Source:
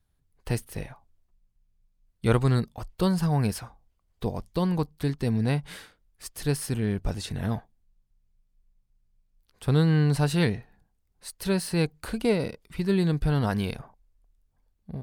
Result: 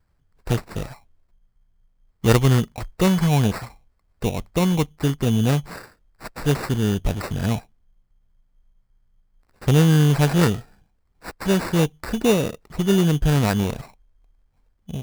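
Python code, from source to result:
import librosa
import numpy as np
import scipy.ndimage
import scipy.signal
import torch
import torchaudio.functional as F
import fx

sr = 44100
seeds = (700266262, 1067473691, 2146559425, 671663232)

y = fx.sample_hold(x, sr, seeds[0], rate_hz=3200.0, jitter_pct=0)
y = y * librosa.db_to_amplitude(6.0)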